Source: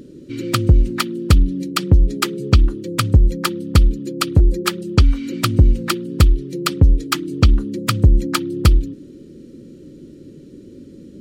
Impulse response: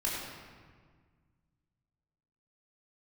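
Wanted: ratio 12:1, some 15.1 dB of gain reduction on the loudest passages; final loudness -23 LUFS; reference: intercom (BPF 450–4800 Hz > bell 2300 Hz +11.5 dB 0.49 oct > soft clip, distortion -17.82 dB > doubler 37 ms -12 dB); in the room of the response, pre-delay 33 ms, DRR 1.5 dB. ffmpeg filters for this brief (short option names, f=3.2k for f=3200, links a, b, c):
-filter_complex "[0:a]acompressor=threshold=-22dB:ratio=12,asplit=2[a][b];[1:a]atrim=start_sample=2205,adelay=33[c];[b][c]afir=irnorm=-1:irlink=0,volume=-8dB[d];[a][d]amix=inputs=2:normalize=0,highpass=450,lowpass=4.8k,equalizer=f=2.3k:t=o:w=0.49:g=11.5,asoftclip=threshold=-12dB,asplit=2[e][f];[f]adelay=37,volume=-12dB[g];[e][g]amix=inputs=2:normalize=0,volume=6dB"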